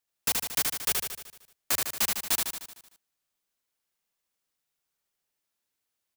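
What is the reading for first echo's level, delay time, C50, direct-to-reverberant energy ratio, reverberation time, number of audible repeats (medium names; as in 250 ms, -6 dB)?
-3.5 dB, 76 ms, no reverb, no reverb, no reverb, 7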